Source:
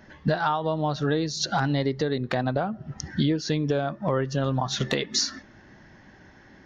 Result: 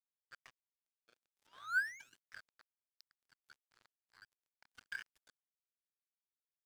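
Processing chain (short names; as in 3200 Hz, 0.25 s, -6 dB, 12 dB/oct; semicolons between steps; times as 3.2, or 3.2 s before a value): sample leveller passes 2; pitch shift -3 st; EQ curve 140 Hz 0 dB, 250 Hz -24 dB, 7400 Hz +8 dB; painted sound rise, 0.62–2.23, 200–3400 Hz -19 dBFS; level quantiser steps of 14 dB; auto-wah 500–2500 Hz, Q 16, down, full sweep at -14.5 dBFS; crossover distortion -50.5 dBFS; gain +3 dB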